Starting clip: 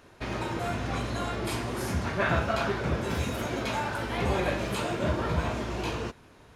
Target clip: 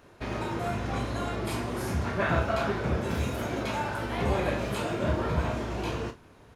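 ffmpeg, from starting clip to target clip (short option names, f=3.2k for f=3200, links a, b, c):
-filter_complex "[0:a]equalizer=f=5k:w=0.31:g=-3.5,asplit=2[a][b];[b]aecho=0:1:29|53:0.355|0.168[c];[a][c]amix=inputs=2:normalize=0"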